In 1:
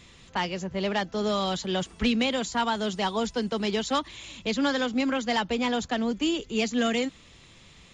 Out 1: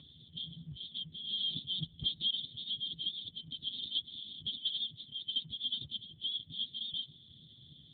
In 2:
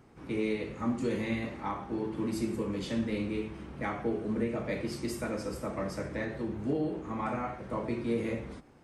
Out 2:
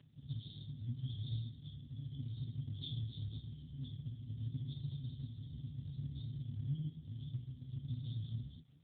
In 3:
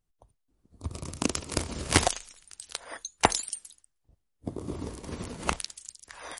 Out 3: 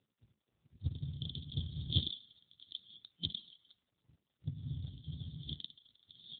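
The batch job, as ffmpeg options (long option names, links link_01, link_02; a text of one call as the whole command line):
ffmpeg -i in.wav -af "afftfilt=real='re*(1-between(b*sr/4096,170,3100))':imag='im*(1-between(b*sr/4096,170,3100))':win_size=4096:overlap=0.75,volume=5dB" -ar 8000 -c:a libopencore_amrnb -b:a 7400 out.amr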